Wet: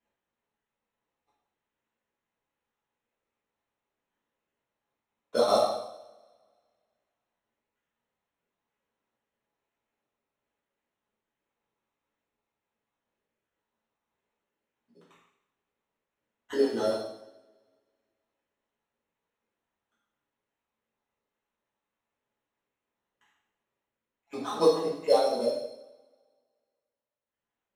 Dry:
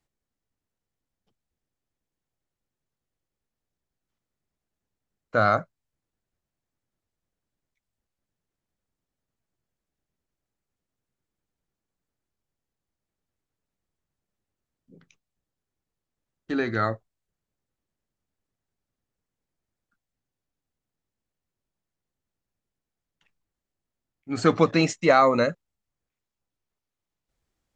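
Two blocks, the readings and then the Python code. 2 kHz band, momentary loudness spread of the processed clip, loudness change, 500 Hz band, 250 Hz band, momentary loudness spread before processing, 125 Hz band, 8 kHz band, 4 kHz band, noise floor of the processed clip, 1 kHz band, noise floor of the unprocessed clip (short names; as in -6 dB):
-17.0 dB, 17 LU, -4.5 dB, -1.0 dB, -8.5 dB, 11 LU, -18.5 dB, -4.0 dB, -1.0 dB, under -85 dBFS, -7.0 dB, under -85 dBFS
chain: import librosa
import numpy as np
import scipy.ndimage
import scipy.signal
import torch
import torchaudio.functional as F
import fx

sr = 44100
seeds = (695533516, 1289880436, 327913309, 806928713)

y = fx.spec_dropout(x, sr, seeds[0], share_pct=39)
y = fx.env_lowpass_down(y, sr, base_hz=870.0, full_db=-27.5)
y = scipy.signal.sosfilt(scipy.signal.butter(2, 470.0, 'highpass', fs=sr, output='sos'), y)
y = fx.band_shelf(y, sr, hz=1700.0, db=-9.0, octaves=1.1)
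y = fx.rider(y, sr, range_db=10, speed_s=2.0)
y = fx.sample_hold(y, sr, seeds[1], rate_hz=4800.0, jitter_pct=0)
y = fx.air_absorb(y, sr, metres=58.0)
y = fx.rev_double_slope(y, sr, seeds[2], early_s=0.79, late_s=2.0, knee_db=-24, drr_db=-9.0)
y = F.gain(torch.from_numpy(y), -5.5).numpy()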